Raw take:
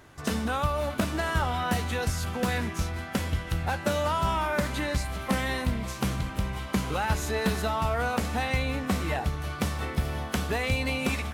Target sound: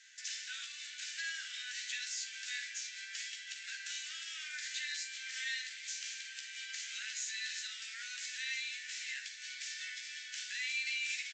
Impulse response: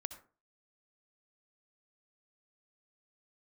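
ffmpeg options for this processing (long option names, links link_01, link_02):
-filter_complex "[0:a]aemphasis=mode=production:type=75fm,alimiter=limit=-16.5dB:level=0:latency=1:release=51,acompressor=threshold=-32dB:ratio=2,aresample=16000,acrusher=bits=3:mode=log:mix=0:aa=0.000001,aresample=44100,asuperpass=centerf=4000:order=20:qfactor=0.53,asplit=2[link_01][link_02];[link_02]adelay=14,volume=-7dB[link_03];[link_01][link_03]amix=inputs=2:normalize=0[link_04];[1:a]atrim=start_sample=2205,asetrate=66150,aresample=44100[link_05];[link_04][link_05]afir=irnorm=-1:irlink=0,volume=2dB"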